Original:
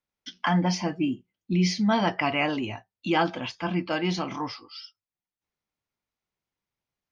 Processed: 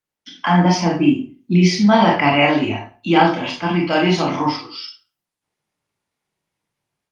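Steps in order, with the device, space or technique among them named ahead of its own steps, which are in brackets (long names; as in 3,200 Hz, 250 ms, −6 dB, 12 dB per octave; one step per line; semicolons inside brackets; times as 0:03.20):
0:03.26–0:04.03: high-shelf EQ 2,500 Hz +3.5 dB
far-field microphone of a smart speaker (convolution reverb RT60 0.40 s, pre-delay 23 ms, DRR −1 dB; high-pass filter 89 Hz 12 dB per octave; automatic gain control gain up to 8 dB; level +1 dB; Opus 32 kbit/s 48,000 Hz)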